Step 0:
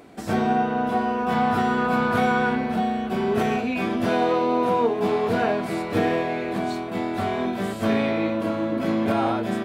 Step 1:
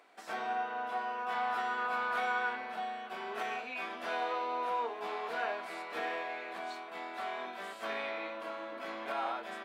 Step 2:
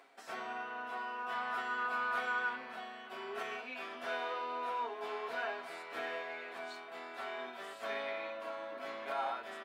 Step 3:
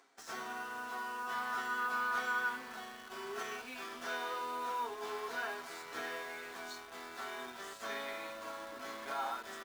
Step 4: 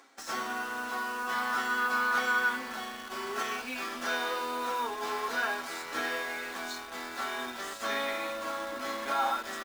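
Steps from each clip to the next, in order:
HPF 890 Hz 12 dB/oct; high shelf 5300 Hz -10 dB; gain -6.5 dB
comb 7.4 ms, depth 57%; reverse; upward compressor, threshold -45 dBFS; reverse; gain -3.5 dB
fifteen-band EQ 630 Hz -8 dB, 2500 Hz -6 dB, 6300 Hz +9 dB; in parallel at -3.5 dB: requantised 8-bit, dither none; on the sum: gain -2.5 dB
comb 3.6 ms, depth 38%; gain +8 dB

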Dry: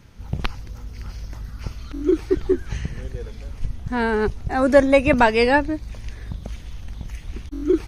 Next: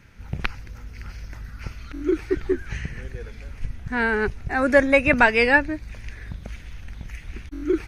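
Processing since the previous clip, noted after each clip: band shelf 1900 Hz +8 dB 1.1 oct; gain -3.5 dB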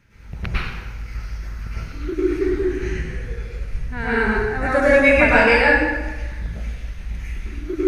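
plate-style reverb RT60 1.2 s, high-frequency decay 0.85×, pre-delay 90 ms, DRR -10 dB; gain -7 dB

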